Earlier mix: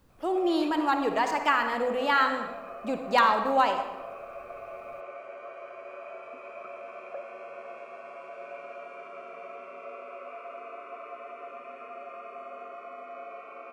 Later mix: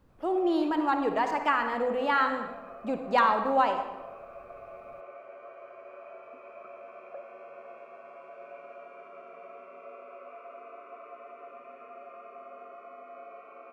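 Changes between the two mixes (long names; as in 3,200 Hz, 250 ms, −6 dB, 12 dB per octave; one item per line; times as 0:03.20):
background −3.5 dB
master: add high-shelf EQ 2,900 Hz −10.5 dB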